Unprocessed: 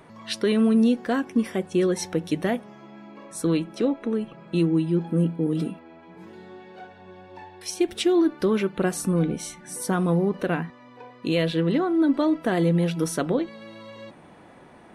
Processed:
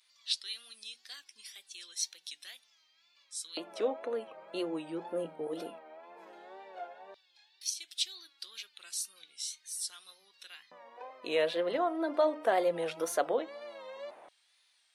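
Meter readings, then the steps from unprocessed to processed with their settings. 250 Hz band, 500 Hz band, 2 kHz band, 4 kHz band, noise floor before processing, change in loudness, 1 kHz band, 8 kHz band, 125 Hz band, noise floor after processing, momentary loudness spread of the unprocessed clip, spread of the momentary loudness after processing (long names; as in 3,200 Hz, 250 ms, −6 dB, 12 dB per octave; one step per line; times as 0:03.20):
−20.5 dB, −8.0 dB, −9.0 dB, −2.5 dB, −49 dBFS, −11.0 dB, −4.5 dB, −3.0 dB, −31.5 dB, −70 dBFS, 14 LU, 21 LU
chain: pitch vibrato 2 Hz 99 cents
mains-hum notches 60/120/180/240/300 Hz
auto-filter high-pass square 0.14 Hz 620–4,200 Hz
level −6 dB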